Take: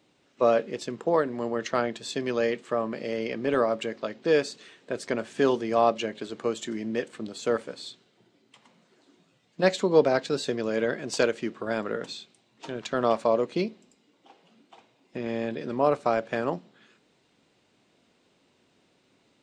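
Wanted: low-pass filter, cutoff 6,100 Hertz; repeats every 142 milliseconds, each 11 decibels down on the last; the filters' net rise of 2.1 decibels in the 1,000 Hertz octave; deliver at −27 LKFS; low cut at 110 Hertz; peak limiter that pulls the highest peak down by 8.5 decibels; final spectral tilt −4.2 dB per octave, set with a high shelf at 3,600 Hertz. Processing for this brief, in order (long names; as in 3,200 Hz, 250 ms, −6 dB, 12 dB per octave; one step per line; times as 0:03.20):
high-pass filter 110 Hz
low-pass filter 6,100 Hz
parametric band 1,000 Hz +3.5 dB
high-shelf EQ 3,600 Hz −7 dB
brickwall limiter −16 dBFS
repeating echo 142 ms, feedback 28%, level −11 dB
level +2.5 dB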